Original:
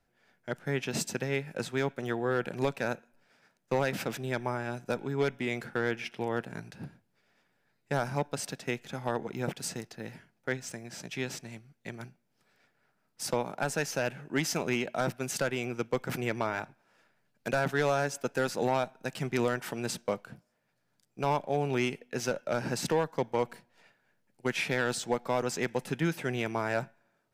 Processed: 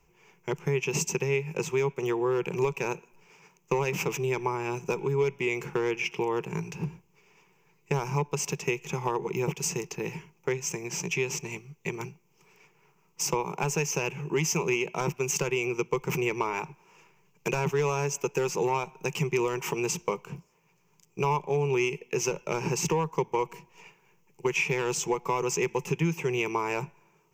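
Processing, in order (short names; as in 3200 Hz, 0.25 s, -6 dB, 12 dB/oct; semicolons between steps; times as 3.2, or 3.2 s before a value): ripple EQ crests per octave 0.75, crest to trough 17 dB; compressor 2.5:1, threshold -35 dBFS, peak gain reduction 11.5 dB; gain +7 dB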